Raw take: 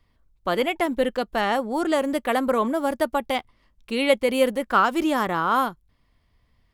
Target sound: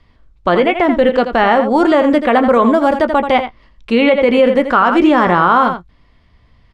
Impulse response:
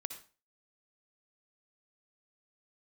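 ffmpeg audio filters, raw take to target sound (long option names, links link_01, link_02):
-filter_complex "[0:a]lowpass=5000,acrossover=split=2800[link_01][link_02];[link_01]asplit=2[link_03][link_04];[link_04]adelay=17,volume=-11.5dB[link_05];[link_03][link_05]amix=inputs=2:normalize=0[link_06];[link_02]acompressor=threshold=-48dB:ratio=6[link_07];[link_06][link_07]amix=inputs=2:normalize=0,aecho=1:1:83:0.299,alimiter=level_in=14dB:limit=-1dB:release=50:level=0:latency=1,volume=-1dB"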